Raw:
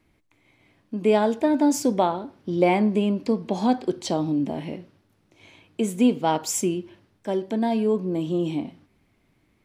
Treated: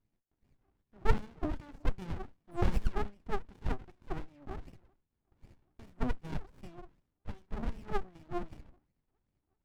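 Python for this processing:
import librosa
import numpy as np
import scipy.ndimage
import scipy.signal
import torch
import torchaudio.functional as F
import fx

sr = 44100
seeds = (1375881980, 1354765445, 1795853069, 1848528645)

y = fx.spec_paint(x, sr, seeds[0], shape='fall', start_s=2.51, length_s=0.51, low_hz=630.0, high_hz=11000.0, level_db=-24.0)
y = fx.wah_lfo(y, sr, hz=2.6, low_hz=380.0, high_hz=2800.0, q=19.0)
y = fx.running_max(y, sr, window=65)
y = F.gain(torch.from_numpy(y), 9.5).numpy()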